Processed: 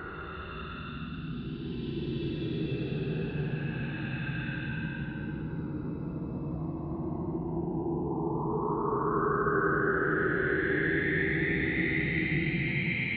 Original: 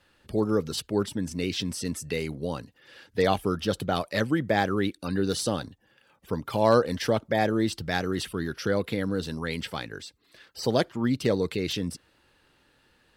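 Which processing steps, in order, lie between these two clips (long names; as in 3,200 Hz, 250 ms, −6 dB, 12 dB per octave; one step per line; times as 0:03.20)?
all-pass dispersion highs, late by 112 ms, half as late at 380 Hz
single-sideband voice off tune −91 Hz 230–2,800 Hz
extreme stretch with random phases 37×, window 0.05 s, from 0:09.29
level +3.5 dB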